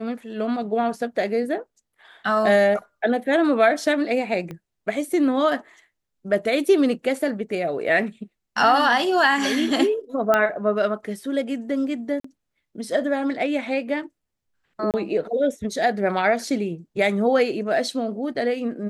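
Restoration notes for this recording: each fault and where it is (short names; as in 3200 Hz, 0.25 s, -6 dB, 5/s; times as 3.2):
4.51 pop -22 dBFS
10.34 pop -7 dBFS
12.2–12.24 gap 44 ms
14.91–14.94 gap 28 ms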